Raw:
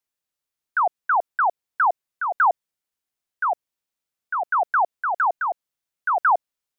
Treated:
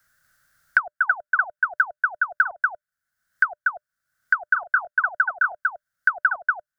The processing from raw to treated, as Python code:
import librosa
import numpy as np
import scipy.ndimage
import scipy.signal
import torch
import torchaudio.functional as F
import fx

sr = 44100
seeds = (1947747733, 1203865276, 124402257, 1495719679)

y = fx.curve_eq(x, sr, hz=(130.0, 420.0, 600.0, 980.0, 1500.0, 2500.0, 4800.0), db=(0, -20, -8, -17, 11, -17, -9))
y = y + 10.0 ** (-3.5 / 20.0) * np.pad(y, (int(238 * sr / 1000.0), 0))[:len(y)]
y = fx.band_squash(y, sr, depth_pct=100)
y = y * librosa.db_to_amplitude(-4.0)